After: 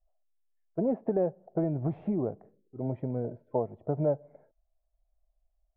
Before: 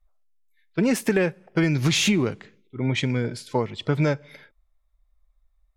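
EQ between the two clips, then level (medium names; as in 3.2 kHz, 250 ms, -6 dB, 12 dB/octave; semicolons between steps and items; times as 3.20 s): four-pole ladder low-pass 740 Hz, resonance 70%; +2.0 dB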